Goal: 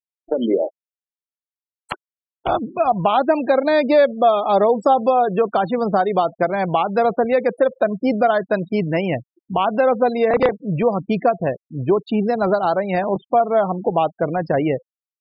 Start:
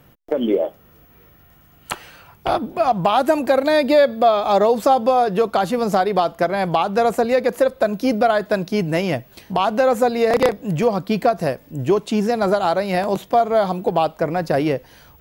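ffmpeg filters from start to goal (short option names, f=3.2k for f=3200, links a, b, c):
-filter_complex "[0:a]afftfilt=real='re*gte(hypot(re,im),0.0562)':imag='im*gte(hypot(re,im),0.0562)':win_size=1024:overlap=0.75,acrossover=split=3900[a][b];[b]acompressor=threshold=-46dB:ratio=4:attack=1:release=60[c];[a][c]amix=inputs=2:normalize=0"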